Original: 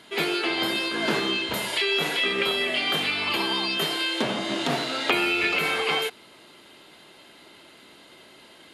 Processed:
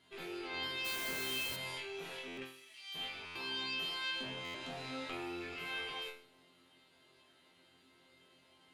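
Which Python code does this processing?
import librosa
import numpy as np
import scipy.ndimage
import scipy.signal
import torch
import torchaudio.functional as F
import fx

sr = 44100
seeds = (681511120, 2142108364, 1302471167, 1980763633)

p1 = fx.rattle_buzz(x, sr, strikes_db=-44.0, level_db=-21.0)
p2 = fx.cheby_harmonics(p1, sr, harmonics=(3, 6), levels_db=(-21, -30), full_scale_db=-7.0)
p3 = fx.low_shelf(p2, sr, hz=130.0, db=10.0)
p4 = fx.over_compress(p3, sr, threshold_db=-32.0, ratio=-1.0)
p5 = p3 + F.gain(torch.from_numpy(p4), -2.0).numpy()
p6 = fx.pre_emphasis(p5, sr, coefficient=0.97, at=(2.44, 2.94), fade=0.02)
p7 = fx.resonator_bank(p6, sr, root=41, chord='fifth', decay_s=0.45)
p8 = fx.quant_dither(p7, sr, seeds[0], bits=6, dither='triangular', at=(0.84, 1.55), fade=0.02)
p9 = fx.brickwall_lowpass(p8, sr, high_hz=13000.0, at=(4.57, 5.32))
p10 = fx.buffer_glitch(p9, sr, at_s=(2.27, 3.25, 4.44), block=512, repeats=8)
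y = F.gain(torch.from_numpy(p10), -8.5).numpy()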